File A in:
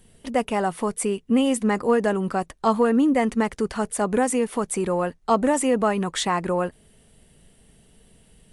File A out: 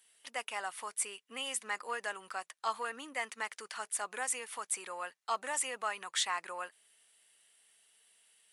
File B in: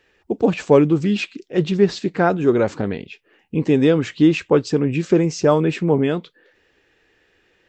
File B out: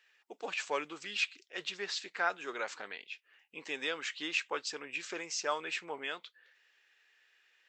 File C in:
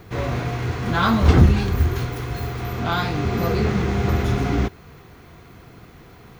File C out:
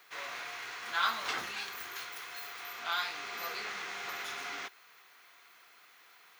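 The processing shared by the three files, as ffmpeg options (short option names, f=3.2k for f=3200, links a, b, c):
-af "highpass=1.4k,volume=-5dB"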